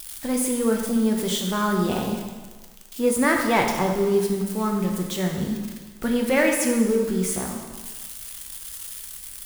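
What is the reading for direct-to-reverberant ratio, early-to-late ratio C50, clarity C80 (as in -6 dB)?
0.5 dB, 3.5 dB, 5.5 dB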